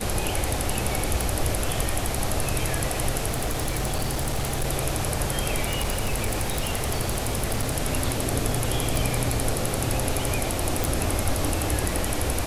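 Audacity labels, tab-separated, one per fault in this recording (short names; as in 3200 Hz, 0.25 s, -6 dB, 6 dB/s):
1.210000	1.210000	pop
3.280000	4.660000	clipped -21 dBFS
5.630000	7.730000	clipped -19.5 dBFS
8.960000	8.960000	pop
10.840000	10.840000	pop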